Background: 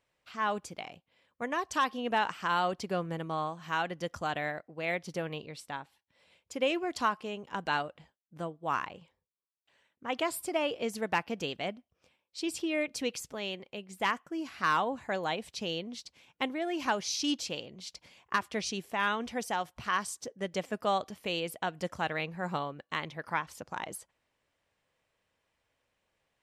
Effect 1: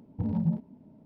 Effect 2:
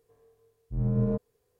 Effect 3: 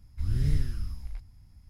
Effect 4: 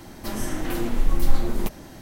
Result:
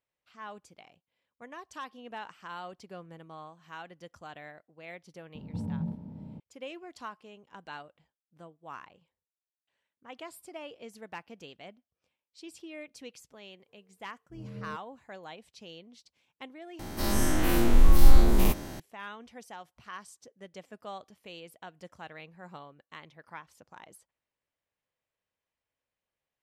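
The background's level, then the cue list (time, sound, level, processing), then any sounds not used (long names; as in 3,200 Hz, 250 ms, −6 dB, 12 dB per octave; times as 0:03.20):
background −12.5 dB
0:05.35: mix in 1 −9 dB + compressor on every frequency bin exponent 0.4
0:13.59: mix in 2 −13.5 dB + high-pass filter 140 Hz 6 dB per octave
0:16.79: overwrite with 4 −2.5 dB + every bin's largest magnitude spread in time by 120 ms
not used: 3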